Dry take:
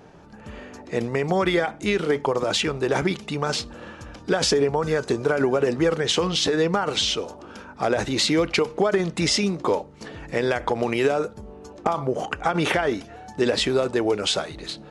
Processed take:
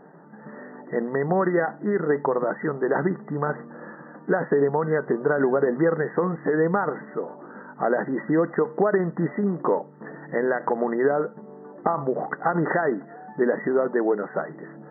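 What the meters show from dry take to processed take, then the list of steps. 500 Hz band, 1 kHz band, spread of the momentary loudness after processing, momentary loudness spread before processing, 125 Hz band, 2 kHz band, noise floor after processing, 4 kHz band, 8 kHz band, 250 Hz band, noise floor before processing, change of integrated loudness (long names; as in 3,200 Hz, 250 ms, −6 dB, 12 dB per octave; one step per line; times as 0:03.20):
0.0 dB, 0.0 dB, 17 LU, 16 LU, −1.5 dB, −2.0 dB, −45 dBFS, below −40 dB, below −40 dB, 0.0 dB, −45 dBFS, −1.5 dB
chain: brick-wall band-pass 130–2,000 Hz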